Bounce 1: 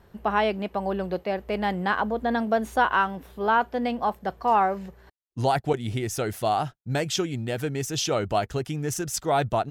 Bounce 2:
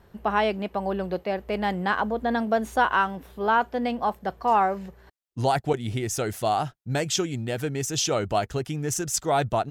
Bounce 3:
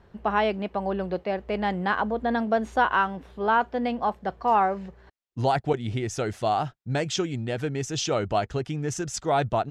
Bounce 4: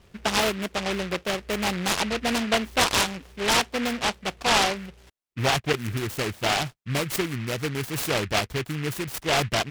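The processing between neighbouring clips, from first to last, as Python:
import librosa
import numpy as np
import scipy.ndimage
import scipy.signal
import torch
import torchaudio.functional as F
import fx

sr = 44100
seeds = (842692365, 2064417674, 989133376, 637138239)

y1 = fx.dynamic_eq(x, sr, hz=7100.0, q=1.8, threshold_db=-48.0, ratio=4.0, max_db=5)
y2 = fx.air_absorb(y1, sr, metres=82.0)
y3 = fx.noise_mod_delay(y2, sr, seeds[0], noise_hz=1900.0, depth_ms=0.21)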